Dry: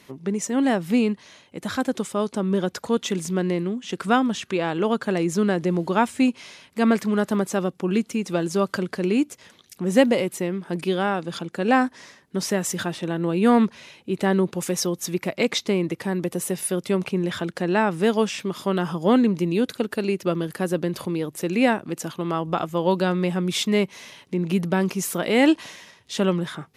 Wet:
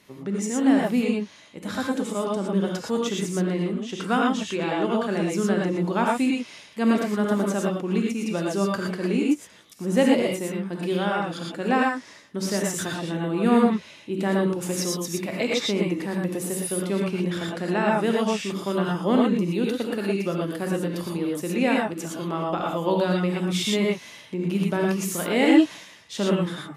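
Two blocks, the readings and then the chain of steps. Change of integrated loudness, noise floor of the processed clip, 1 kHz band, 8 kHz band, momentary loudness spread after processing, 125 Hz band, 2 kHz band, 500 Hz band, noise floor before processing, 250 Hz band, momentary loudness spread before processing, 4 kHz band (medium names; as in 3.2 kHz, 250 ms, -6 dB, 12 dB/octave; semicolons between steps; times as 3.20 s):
-1.0 dB, -48 dBFS, -1.5 dB, -1.0 dB, 9 LU, -1.0 dB, -1.0 dB, -1.5 dB, -56 dBFS, -0.5 dB, 8 LU, -0.5 dB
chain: gated-style reverb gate 140 ms rising, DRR -2 dB; trim -5 dB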